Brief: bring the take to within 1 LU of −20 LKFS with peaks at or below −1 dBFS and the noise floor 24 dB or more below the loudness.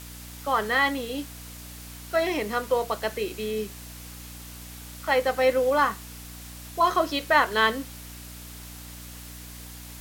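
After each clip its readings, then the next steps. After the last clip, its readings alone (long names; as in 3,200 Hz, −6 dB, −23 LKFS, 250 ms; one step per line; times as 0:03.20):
mains hum 60 Hz; hum harmonics up to 300 Hz; level of the hum −42 dBFS; background noise floor −42 dBFS; target noise floor −49 dBFS; integrated loudness −25.0 LKFS; sample peak −7.0 dBFS; target loudness −20.0 LKFS
→ hum removal 60 Hz, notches 5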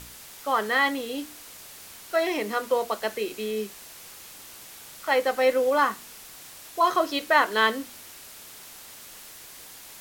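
mains hum none found; background noise floor −45 dBFS; target noise floor −49 dBFS
→ broadband denoise 6 dB, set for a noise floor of −45 dBFS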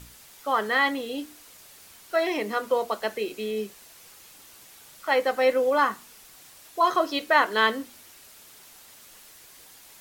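background noise floor −51 dBFS; integrated loudness −25.0 LKFS; sample peak −7.0 dBFS; target loudness −20.0 LKFS
→ level +5 dB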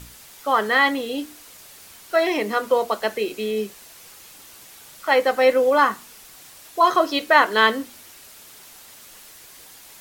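integrated loudness −20.0 LKFS; sample peak −2.0 dBFS; background noise floor −46 dBFS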